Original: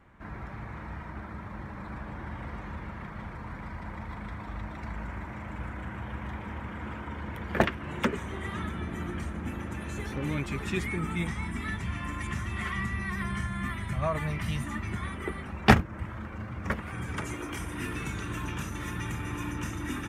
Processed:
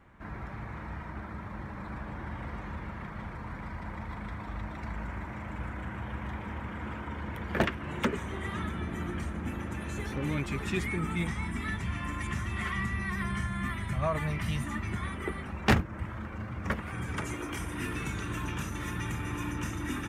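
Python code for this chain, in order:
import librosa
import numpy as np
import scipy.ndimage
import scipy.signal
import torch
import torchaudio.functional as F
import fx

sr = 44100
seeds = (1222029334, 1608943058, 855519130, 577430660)

y = 10.0 ** (-16.0 / 20.0) * np.tanh(x / 10.0 ** (-16.0 / 20.0))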